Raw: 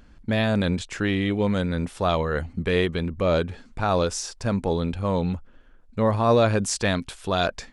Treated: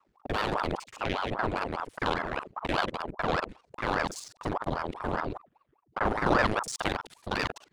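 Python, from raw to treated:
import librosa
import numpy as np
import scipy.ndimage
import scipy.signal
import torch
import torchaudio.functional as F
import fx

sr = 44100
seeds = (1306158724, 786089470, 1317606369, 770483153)

y = fx.local_reverse(x, sr, ms=42.0)
y = fx.power_curve(y, sr, exponent=1.4)
y = fx.ring_lfo(y, sr, carrier_hz=640.0, swing_pct=85, hz=5.0)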